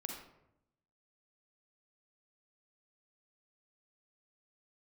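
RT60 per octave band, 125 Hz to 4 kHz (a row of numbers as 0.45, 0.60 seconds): 1.1, 1.0, 0.90, 0.75, 0.65, 0.45 seconds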